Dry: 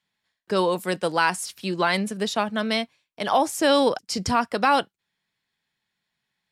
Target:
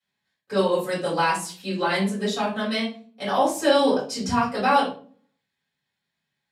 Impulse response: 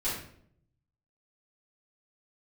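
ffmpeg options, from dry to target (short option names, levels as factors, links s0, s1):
-filter_complex "[0:a]highpass=92[s0];[1:a]atrim=start_sample=2205,asetrate=74970,aresample=44100[s1];[s0][s1]afir=irnorm=-1:irlink=0,volume=0.708"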